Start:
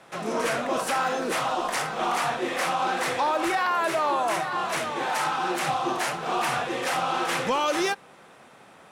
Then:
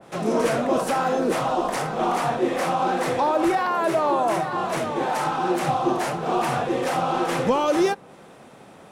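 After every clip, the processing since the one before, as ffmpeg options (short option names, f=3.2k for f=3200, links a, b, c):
-filter_complex "[0:a]equalizer=f=1.2k:t=o:w=2.3:g=-5.5,acrossover=split=1100[a][b];[a]acontrast=51[c];[c][b]amix=inputs=2:normalize=0,adynamicequalizer=threshold=0.0112:dfrequency=1900:dqfactor=0.7:tfrequency=1900:tqfactor=0.7:attack=5:release=100:ratio=0.375:range=2.5:mode=cutabove:tftype=highshelf,volume=3dB"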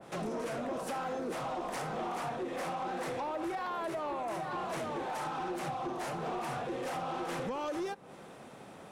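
-af "aeval=exprs='0.335*(cos(1*acos(clip(val(0)/0.335,-1,1)))-cos(1*PI/2))+0.0376*(cos(3*acos(clip(val(0)/0.335,-1,1)))-cos(3*PI/2))':c=same,acompressor=threshold=-31dB:ratio=5,asoftclip=type=tanh:threshold=-31dB"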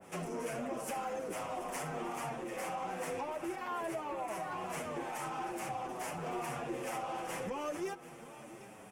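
-filter_complex "[0:a]aexciter=amount=1.4:drive=2.2:freq=2.1k,aecho=1:1:737:0.178,asplit=2[a][b];[b]adelay=7.7,afreqshift=-0.66[c];[a][c]amix=inputs=2:normalize=1"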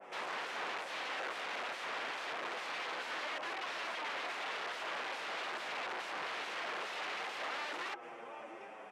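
-af "aeval=exprs='(mod(75*val(0)+1,2)-1)/75':c=same,highpass=500,lowpass=2.8k,volume=5.5dB"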